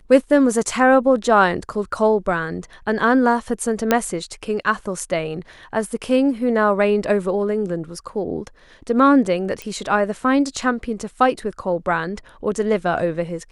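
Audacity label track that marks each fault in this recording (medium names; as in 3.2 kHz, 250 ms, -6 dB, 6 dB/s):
3.910000	3.910000	pop -2 dBFS
9.620000	9.620000	pop -14 dBFS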